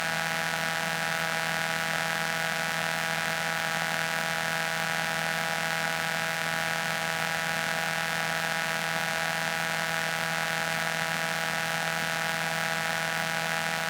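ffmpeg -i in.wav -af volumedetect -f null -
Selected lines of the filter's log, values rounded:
mean_volume: -29.4 dB
max_volume: -9.7 dB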